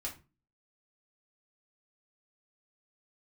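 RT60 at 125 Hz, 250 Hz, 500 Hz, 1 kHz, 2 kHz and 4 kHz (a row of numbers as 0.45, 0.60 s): 0.50, 0.50, 0.35, 0.30, 0.25, 0.20 s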